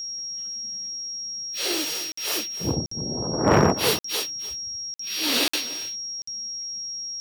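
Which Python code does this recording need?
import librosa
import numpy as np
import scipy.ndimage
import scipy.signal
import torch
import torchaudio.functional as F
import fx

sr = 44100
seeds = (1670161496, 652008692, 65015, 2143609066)

y = fx.fix_declip(x, sr, threshold_db=-9.5)
y = fx.notch(y, sr, hz=5600.0, q=30.0)
y = fx.fix_interpolate(y, sr, at_s=(2.12, 2.86, 3.99, 4.94, 5.48, 6.22), length_ms=54.0)
y = fx.fix_echo_inverse(y, sr, delay_ms=298, level_db=-15.0)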